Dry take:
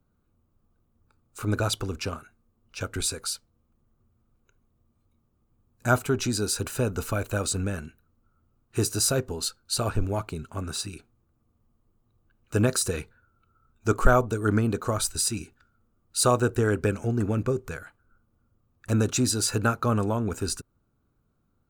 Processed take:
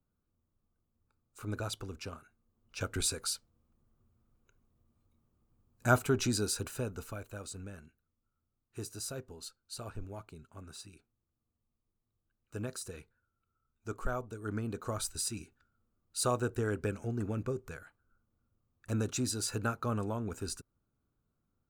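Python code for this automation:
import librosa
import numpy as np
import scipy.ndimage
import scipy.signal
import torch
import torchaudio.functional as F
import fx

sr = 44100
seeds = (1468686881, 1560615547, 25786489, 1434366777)

y = fx.gain(x, sr, db=fx.line((2.12, -11.5), (2.83, -4.0), (6.32, -4.0), (7.31, -16.5), (14.28, -16.5), (14.93, -9.5)))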